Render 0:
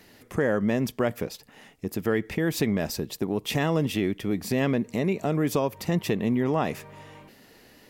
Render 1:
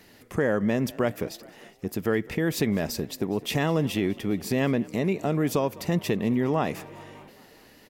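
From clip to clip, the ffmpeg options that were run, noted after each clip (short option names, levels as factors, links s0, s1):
-filter_complex "[0:a]asplit=6[s0][s1][s2][s3][s4][s5];[s1]adelay=205,afreqshift=32,volume=0.0794[s6];[s2]adelay=410,afreqshift=64,volume=0.0501[s7];[s3]adelay=615,afreqshift=96,volume=0.0316[s8];[s4]adelay=820,afreqshift=128,volume=0.02[s9];[s5]adelay=1025,afreqshift=160,volume=0.0124[s10];[s0][s6][s7][s8][s9][s10]amix=inputs=6:normalize=0"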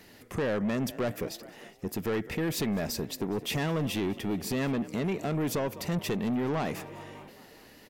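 -af "asoftclip=type=tanh:threshold=0.0562"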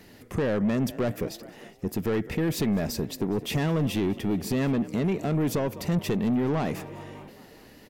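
-af "lowshelf=f=470:g=6"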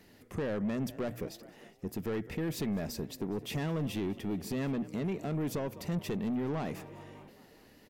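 -af "bandreject=f=60:t=h:w=6,bandreject=f=120:t=h:w=6,volume=0.398"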